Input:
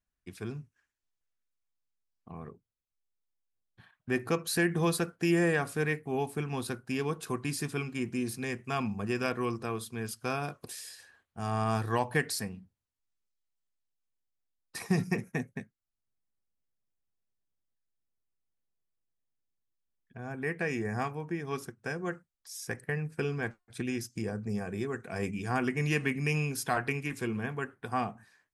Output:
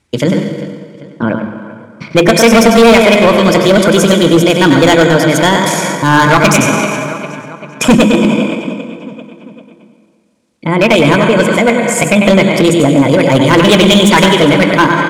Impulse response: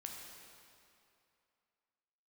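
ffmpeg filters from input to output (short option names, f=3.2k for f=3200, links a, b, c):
-filter_complex "[0:a]highpass=67,asetrate=59535,aresample=44100,lowpass=f=9.7k:w=0.5412,lowpass=f=9.7k:w=1.3066,lowshelf=f=460:g=4,bandreject=f=50:t=h:w=6,bandreject=f=100:t=h:w=6,bandreject=f=150:t=h:w=6,bandreject=f=200:t=h:w=6,bandreject=f=250:t=h:w=6,bandreject=f=300:t=h:w=6,bandreject=f=350:t=h:w=6,asplit=2[a][b];[b]adelay=552,lowpass=f=4.6k:p=1,volume=-19dB,asplit=2[c][d];[d]adelay=552,lowpass=f=4.6k:p=1,volume=0.53,asplit=2[e][f];[f]adelay=552,lowpass=f=4.6k:p=1,volume=0.53,asplit=2[g][h];[h]adelay=552,lowpass=f=4.6k:p=1,volume=0.53[i];[a][c][e][g][i]amix=inputs=5:normalize=0,asplit=2[j][k];[1:a]atrim=start_sample=2205,adelay=139[l];[k][l]afir=irnorm=-1:irlink=0,volume=-1.5dB[m];[j][m]amix=inputs=2:normalize=0,volume=26.5dB,asoftclip=hard,volume=-26.5dB,atempo=1.4,alimiter=level_in=31dB:limit=-1dB:release=50:level=0:latency=1,volume=-1dB"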